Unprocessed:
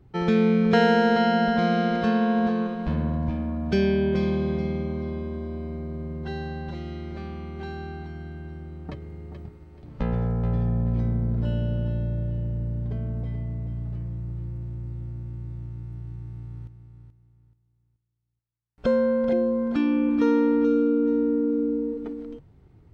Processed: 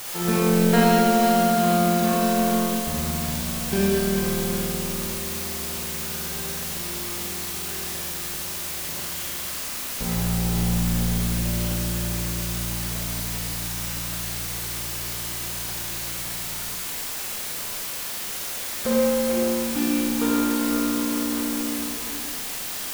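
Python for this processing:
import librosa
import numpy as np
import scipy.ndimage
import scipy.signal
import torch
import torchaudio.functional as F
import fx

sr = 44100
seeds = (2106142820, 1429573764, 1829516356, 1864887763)

y = fx.power_curve(x, sr, exponent=1.4)
y = fx.quant_dither(y, sr, seeds[0], bits=6, dither='triangular')
y = fx.rev_schroeder(y, sr, rt60_s=1.3, comb_ms=31, drr_db=-3.5)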